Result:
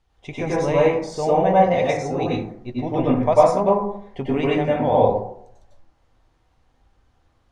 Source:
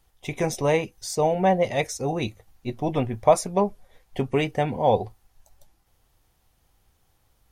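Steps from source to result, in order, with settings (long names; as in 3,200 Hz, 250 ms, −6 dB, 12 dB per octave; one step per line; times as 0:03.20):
high-frequency loss of the air 100 metres
dense smooth reverb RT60 0.66 s, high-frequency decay 0.35×, pre-delay 85 ms, DRR −6.5 dB
level −3 dB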